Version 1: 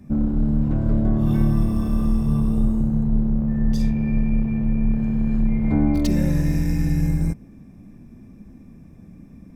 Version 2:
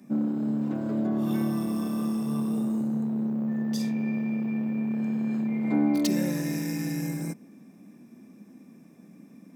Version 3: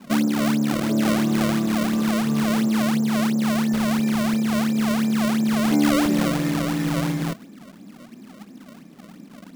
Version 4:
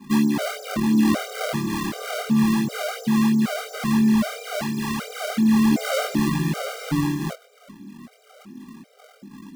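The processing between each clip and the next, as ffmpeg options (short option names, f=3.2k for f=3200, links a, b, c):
-af "highpass=f=200:w=0.5412,highpass=f=200:w=1.3066,highshelf=f=3.7k:g=6.5,volume=-2.5dB"
-filter_complex "[0:a]asplit=2[a][b];[b]alimiter=limit=-21dB:level=0:latency=1:release=195,volume=-1dB[c];[a][c]amix=inputs=2:normalize=0,acrusher=samples=30:mix=1:aa=0.000001:lfo=1:lforange=48:lforate=2.9,volume=1.5dB"
-af "flanger=delay=19:depth=6.4:speed=0.31,afftfilt=real='re*gt(sin(2*PI*1.3*pts/sr)*(1-2*mod(floor(b*sr/1024/400),2)),0)':imag='im*gt(sin(2*PI*1.3*pts/sr)*(1-2*mod(floor(b*sr/1024/400),2)),0)':win_size=1024:overlap=0.75,volume=5dB"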